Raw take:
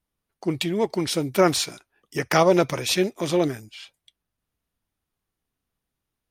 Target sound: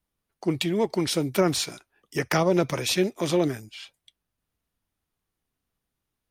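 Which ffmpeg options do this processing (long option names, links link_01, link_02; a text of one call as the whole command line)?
ffmpeg -i in.wav -filter_complex "[0:a]acrossover=split=330[link_01][link_02];[link_02]acompressor=threshold=-22dB:ratio=4[link_03];[link_01][link_03]amix=inputs=2:normalize=0" out.wav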